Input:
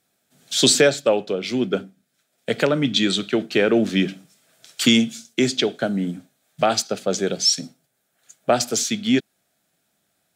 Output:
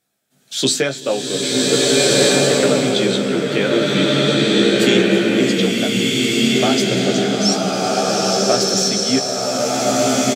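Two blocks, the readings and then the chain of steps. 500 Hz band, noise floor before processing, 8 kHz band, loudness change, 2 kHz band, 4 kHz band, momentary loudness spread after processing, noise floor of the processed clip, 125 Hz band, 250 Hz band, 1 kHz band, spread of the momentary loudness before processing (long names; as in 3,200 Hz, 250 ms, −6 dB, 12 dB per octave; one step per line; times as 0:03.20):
+6.0 dB, −71 dBFS, +6.0 dB, +5.0 dB, +6.0 dB, +6.0 dB, 6 LU, −35 dBFS, +7.5 dB, +5.5 dB, +6.5 dB, 10 LU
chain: double-tracking delay 15 ms −5 dB
slow-attack reverb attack 1,560 ms, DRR −7.5 dB
level −3 dB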